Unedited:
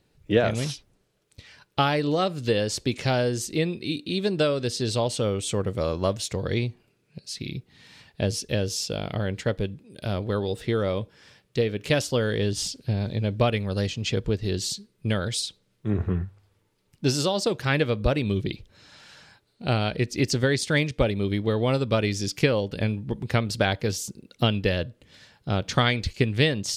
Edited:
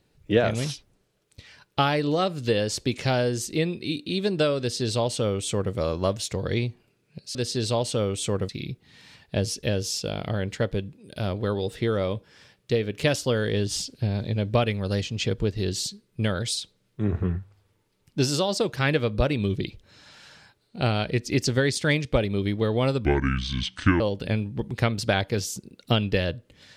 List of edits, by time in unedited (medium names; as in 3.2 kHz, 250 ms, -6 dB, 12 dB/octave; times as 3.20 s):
4.60–5.74 s: copy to 7.35 s
21.91–22.52 s: speed 64%